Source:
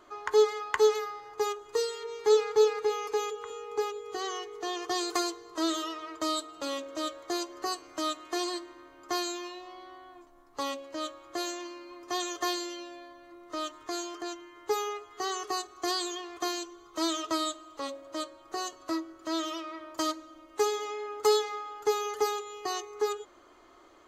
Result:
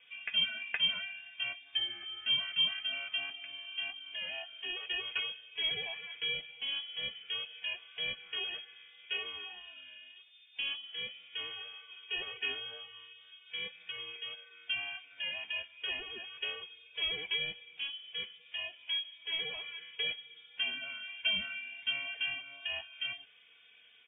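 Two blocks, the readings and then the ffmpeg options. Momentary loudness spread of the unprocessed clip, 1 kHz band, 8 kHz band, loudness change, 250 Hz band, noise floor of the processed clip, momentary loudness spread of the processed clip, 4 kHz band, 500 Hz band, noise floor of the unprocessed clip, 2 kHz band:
15 LU, -21.5 dB, under -40 dB, -3.5 dB, -24.5 dB, -60 dBFS, 13 LU, +4.5 dB, -24.5 dB, -56 dBFS, +4.5 dB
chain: -filter_complex "[0:a]aecho=1:1:3.8:0.64,asplit=2[a][b];[b]asoftclip=type=tanh:threshold=-21.5dB,volume=-7.5dB[c];[a][c]amix=inputs=2:normalize=0,flanger=delay=2.5:depth=7.7:regen=-42:speed=1.9:shape=sinusoidal,lowpass=f=3.1k:t=q:w=0.5098,lowpass=f=3.1k:t=q:w=0.6013,lowpass=f=3.1k:t=q:w=0.9,lowpass=f=3.1k:t=q:w=2.563,afreqshift=-3600,volume=-4.5dB"

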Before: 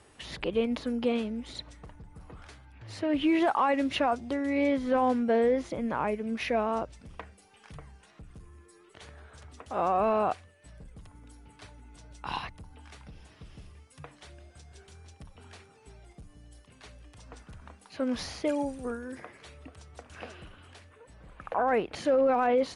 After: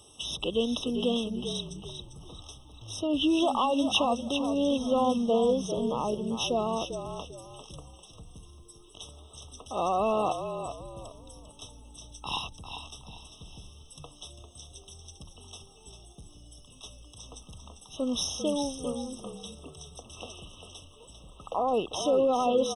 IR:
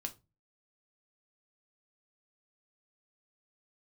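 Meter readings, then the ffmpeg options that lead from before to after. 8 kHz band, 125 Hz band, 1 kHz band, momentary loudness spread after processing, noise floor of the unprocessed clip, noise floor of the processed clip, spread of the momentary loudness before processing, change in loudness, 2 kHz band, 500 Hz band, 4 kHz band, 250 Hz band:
+11.5 dB, +3.0 dB, -0.5 dB, 22 LU, -58 dBFS, -54 dBFS, 20 LU, 0.0 dB, -5.5 dB, 0.0 dB, +9.0 dB, +0.5 dB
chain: -filter_complex "[0:a]highshelf=f=2.8k:t=q:w=1.5:g=11.5,asplit=5[a][b][c][d][e];[b]adelay=397,afreqshift=-44,volume=-8.5dB[f];[c]adelay=794,afreqshift=-88,volume=-18.1dB[g];[d]adelay=1191,afreqshift=-132,volume=-27.8dB[h];[e]adelay=1588,afreqshift=-176,volume=-37.4dB[i];[a][f][g][h][i]amix=inputs=5:normalize=0,afftfilt=real='re*eq(mod(floor(b*sr/1024/1300),2),0)':imag='im*eq(mod(floor(b*sr/1024/1300),2),0)':win_size=1024:overlap=0.75"

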